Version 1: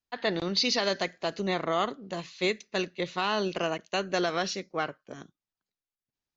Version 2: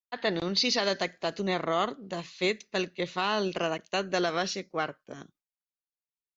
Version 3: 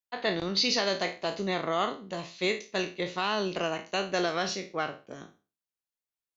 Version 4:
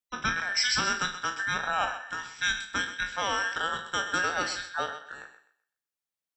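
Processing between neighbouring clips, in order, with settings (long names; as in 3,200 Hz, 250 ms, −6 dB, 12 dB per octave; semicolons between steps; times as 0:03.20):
noise gate with hold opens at −55 dBFS
peak hold with a decay on every bin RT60 0.33 s; level −1.5 dB
frequency inversion band by band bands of 2,000 Hz; on a send: feedback echo with a high-pass in the loop 127 ms, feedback 26%, high-pass 260 Hz, level −11.5 dB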